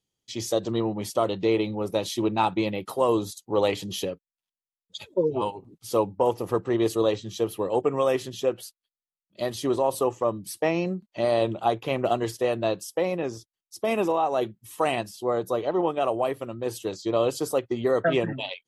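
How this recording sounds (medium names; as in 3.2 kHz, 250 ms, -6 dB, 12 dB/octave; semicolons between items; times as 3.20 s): noise floor -96 dBFS; spectral tilt -4.5 dB/octave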